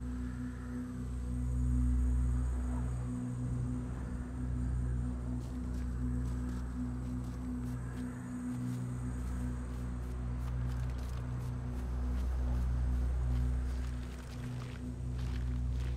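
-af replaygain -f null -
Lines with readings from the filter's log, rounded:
track_gain = +24.3 dB
track_peak = 0.057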